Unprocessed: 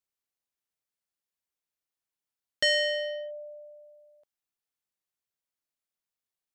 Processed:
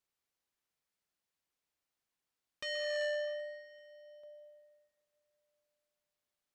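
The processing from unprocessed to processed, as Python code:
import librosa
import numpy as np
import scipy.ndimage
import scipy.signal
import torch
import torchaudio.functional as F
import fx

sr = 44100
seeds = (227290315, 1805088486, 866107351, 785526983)

y = fx.high_shelf(x, sr, hz=7800.0, db=-7.5)
y = fx.over_compress(y, sr, threshold_db=-32.0, ratio=-1.0)
y = fx.echo_feedback(y, sr, ms=387, feedback_pct=40, wet_db=-21)
y = fx.rev_plate(y, sr, seeds[0], rt60_s=2.7, hf_ratio=0.55, predelay_ms=115, drr_db=9.0)
y = fx.transformer_sat(y, sr, knee_hz=1500.0)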